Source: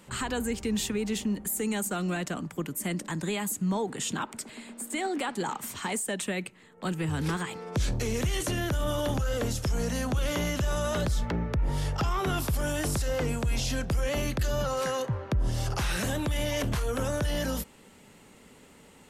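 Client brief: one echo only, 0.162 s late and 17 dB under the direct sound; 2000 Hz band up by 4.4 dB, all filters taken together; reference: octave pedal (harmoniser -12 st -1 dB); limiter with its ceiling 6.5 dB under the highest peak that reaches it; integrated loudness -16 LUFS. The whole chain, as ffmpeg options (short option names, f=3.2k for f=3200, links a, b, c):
-filter_complex "[0:a]equalizer=f=2k:t=o:g=5.5,alimiter=limit=-23dB:level=0:latency=1,aecho=1:1:162:0.141,asplit=2[a][b];[b]asetrate=22050,aresample=44100,atempo=2,volume=-1dB[c];[a][c]amix=inputs=2:normalize=0,volume=14dB"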